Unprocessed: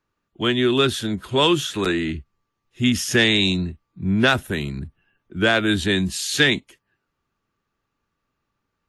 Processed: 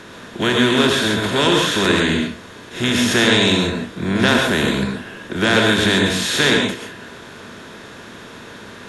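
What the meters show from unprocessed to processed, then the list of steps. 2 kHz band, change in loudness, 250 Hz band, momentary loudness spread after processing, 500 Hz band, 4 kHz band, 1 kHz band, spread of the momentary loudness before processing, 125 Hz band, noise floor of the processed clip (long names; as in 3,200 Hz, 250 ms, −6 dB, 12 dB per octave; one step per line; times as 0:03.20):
+4.5 dB, +4.0 dB, +4.0 dB, 21 LU, +4.0 dB, +4.5 dB, +5.5 dB, 12 LU, +2.5 dB, −38 dBFS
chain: compressor on every frequency bin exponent 0.4
reverb whose tail is shaped and stops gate 160 ms rising, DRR 1 dB
level −4 dB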